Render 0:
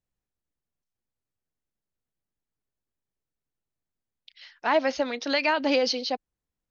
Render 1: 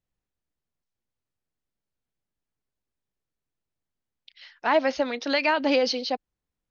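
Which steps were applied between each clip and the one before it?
high-frequency loss of the air 56 metres
level +1.5 dB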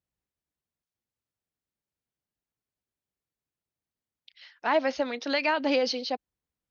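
high-pass filter 48 Hz
level −3 dB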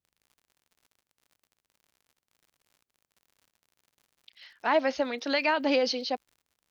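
surface crackle 72 per second −50 dBFS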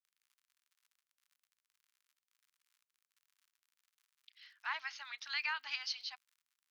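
inverse Chebyshev high-pass filter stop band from 570 Hz, stop band 40 dB
level −7.5 dB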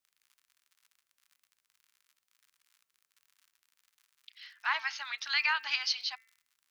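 hum removal 225.6 Hz, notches 12
level +8.5 dB

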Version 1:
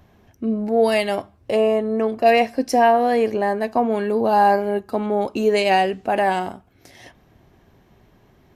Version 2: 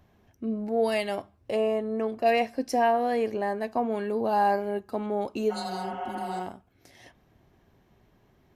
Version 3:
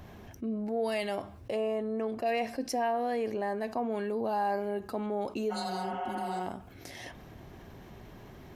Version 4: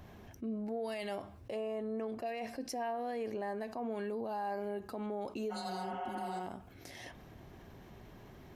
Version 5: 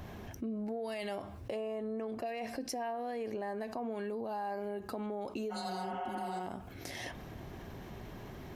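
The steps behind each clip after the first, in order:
healed spectral selection 0:05.53–0:06.38, 380–3,500 Hz after; level −8 dB
envelope flattener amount 50%; level −8.5 dB
brickwall limiter −26 dBFS, peak gain reduction 7 dB; level −4.5 dB
downward compressor 4 to 1, threshold −43 dBFS, peak gain reduction 8 dB; level +7 dB

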